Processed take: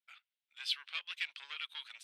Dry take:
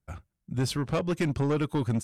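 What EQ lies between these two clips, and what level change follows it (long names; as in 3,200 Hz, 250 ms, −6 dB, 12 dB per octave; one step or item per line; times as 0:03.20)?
four-pole ladder high-pass 2,700 Hz, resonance 35%
high-frequency loss of the air 450 metres
high-shelf EQ 9,300 Hz +6.5 dB
+18.0 dB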